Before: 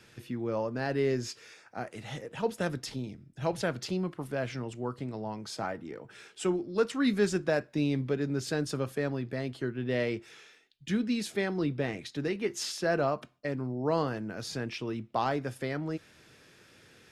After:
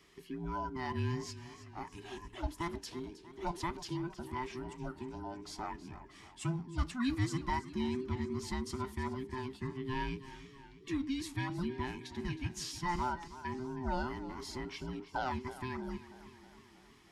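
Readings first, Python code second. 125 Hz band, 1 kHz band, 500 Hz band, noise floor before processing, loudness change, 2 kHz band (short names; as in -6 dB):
-4.0 dB, -1.5 dB, -12.0 dB, -59 dBFS, -6.5 dB, -6.5 dB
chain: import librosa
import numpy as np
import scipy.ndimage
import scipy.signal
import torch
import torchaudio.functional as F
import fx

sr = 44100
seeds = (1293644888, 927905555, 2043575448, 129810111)

y = fx.band_invert(x, sr, width_hz=500)
y = fx.echo_warbled(y, sr, ms=318, feedback_pct=59, rate_hz=2.8, cents=71, wet_db=-15)
y = y * 10.0 ** (-6.5 / 20.0)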